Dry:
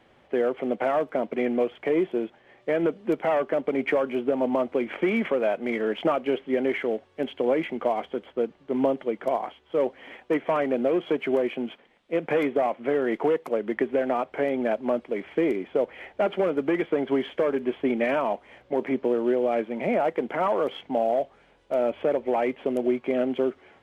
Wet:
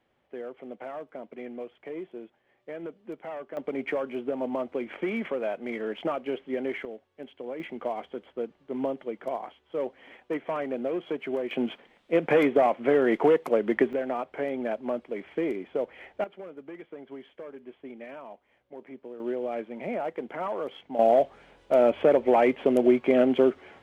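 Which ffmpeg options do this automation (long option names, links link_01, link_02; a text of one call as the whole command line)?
ffmpeg -i in.wav -af "asetnsamples=nb_out_samples=441:pad=0,asendcmd='3.57 volume volume -6dB;6.85 volume volume -13.5dB;7.6 volume volume -6.5dB;11.51 volume volume 2.5dB;13.93 volume volume -5dB;16.24 volume volume -18dB;19.2 volume volume -7.5dB;20.99 volume volume 4dB',volume=-14dB" out.wav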